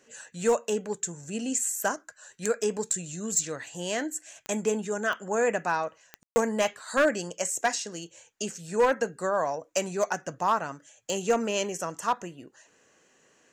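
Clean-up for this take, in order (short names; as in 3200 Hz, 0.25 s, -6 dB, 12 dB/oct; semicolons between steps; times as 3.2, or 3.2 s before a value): clip repair -16 dBFS; de-click; room tone fill 6.23–6.36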